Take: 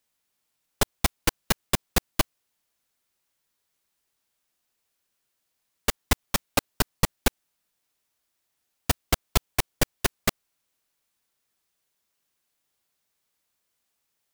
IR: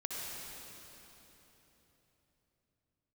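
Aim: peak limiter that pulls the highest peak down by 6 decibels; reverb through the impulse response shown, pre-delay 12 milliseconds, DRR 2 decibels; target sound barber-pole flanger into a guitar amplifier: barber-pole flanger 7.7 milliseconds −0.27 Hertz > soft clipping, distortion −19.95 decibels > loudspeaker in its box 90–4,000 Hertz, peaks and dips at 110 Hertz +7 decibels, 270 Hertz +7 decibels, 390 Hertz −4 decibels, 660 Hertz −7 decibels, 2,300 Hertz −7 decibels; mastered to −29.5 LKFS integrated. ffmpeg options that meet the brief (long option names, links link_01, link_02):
-filter_complex "[0:a]alimiter=limit=-10dB:level=0:latency=1,asplit=2[link_01][link_02];[1:a]atrim=start_sample=2205,adelay=12[link_03];[link_02][link_03]afir=irnorm=-1:irlink=0,volume=-4.5dB[link_04];[link_01][link_04]amix=inputs=2:normalize=0,asplit=2[link_05][link_06];[link_06]adelay=7.7,afreqshift=-0.27[link_07];[link_05][link_07]amix=inputs=2:normalize=1,asoftclip=threshold=-16dB,highpass=90,equalizer=frequency=110:width_type=q:width=4:gain=7,equalizer=frequency=270:width_type=q:width=4:gain=7,equalizer=frequency=390:width_type=q:width=4:gain=-4,equalizer=frequency=660:width_type=q:width=4:gain=-7,equalizer=frequency=2300:width_type=q:width=4:gain=-7,lowpass=frequency=4000:width=0.5412,lowpass=frequency=4000:width=1.3066,volume=7.5dB"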